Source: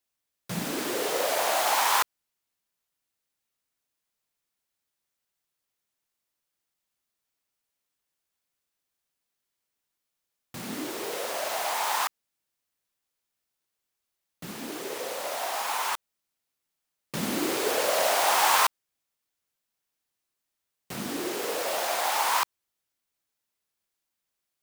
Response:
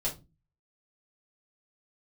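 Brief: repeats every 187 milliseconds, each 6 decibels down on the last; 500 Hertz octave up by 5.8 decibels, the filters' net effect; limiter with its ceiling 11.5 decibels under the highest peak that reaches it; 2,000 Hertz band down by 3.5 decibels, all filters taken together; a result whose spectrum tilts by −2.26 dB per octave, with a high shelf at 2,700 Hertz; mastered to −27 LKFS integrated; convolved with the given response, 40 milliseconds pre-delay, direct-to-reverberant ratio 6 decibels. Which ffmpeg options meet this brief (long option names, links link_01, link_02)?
-filter_complex "[0:a]equalizer=frequency=500:width_type=o:gain=7.5,equalizer=frequency=2000:width_type=o:gain=-8,highshelf=frequency=2700:gain=6.5,alimiter=limit=-19dB:level=0:latency=1,aecho=1:1:187|374|561|748|935|1122:0.501|0.251|0.125|0.0626|0.0313|0.0157,asplit=2[link_01][link_02];[1:a]atrim=start_sample=2205,adelay=40[link_03];[link_02][link_03]afir=irnorm=-1:irlink=0,volume=-10.5dB[link_04];[link_01][link_04]amix=inputs=2:normalize=0,volume=-0.5dB"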